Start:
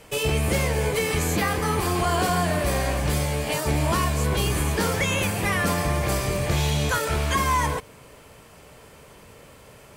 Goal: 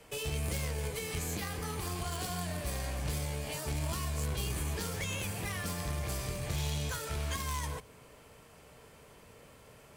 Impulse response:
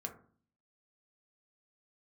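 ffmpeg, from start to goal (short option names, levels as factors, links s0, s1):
-filter_complex "[0:a]aeval=exprs='0.224*(cos(1*acos(clip(val(0)/0.224,-1,1)))-cos(1*PI/2))+0.0708*(cos(3*acos(clip(val(0)/0.224,-1,1)))-cos(3*PI/2))+0.0282*(cos(5*acos(clip(val(0)/0.224,-1,1)))-cos(5*PI/2))':c=same,acrossover=split=140|3000[s0][s1][s2];[s1]acompressor=threshold=0.0178:ratio=4[s3];[s0][s3][s2]amix=inputs=3:normalize=0,asplit=2[s4][s5];[1:a]atrim=start_sample=2205[s6];[s5][s6]afir=irnorm=-1:irlink=0,volume=0.335[s7];[s4][s7]amix=inputs=2:normalize=0,volume=0.473"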